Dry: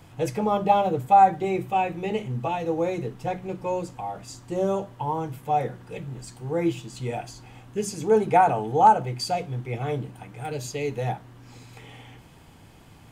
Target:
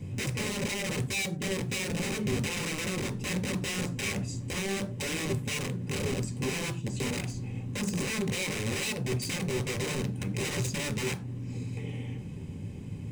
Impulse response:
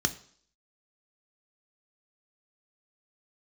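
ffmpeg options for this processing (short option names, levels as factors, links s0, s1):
-filter_complex "[0:a]tiltshelf=f=850:g=5.5,acompressor=threshold=0.0398:ratio=20,aeval=exprs='(mod(31.6*val(0)+1,2)-1)/31.6':c=same,acrusher=bits=9:mode=log:mix=0:aa=0.000001,asplit=2[s0][s1];[1:a]atrim=start_sample=2205,afade=t=out:st=0.21:d=0.01,atrim=end_sample=9702,asetrate=61740,aresample=44100[s2];[s1][s2]afir=irnorm=-1:irlink=0,volume=0.891[s3];[s0][s3]amix=inputs=2:normalize=0,volume=0.75"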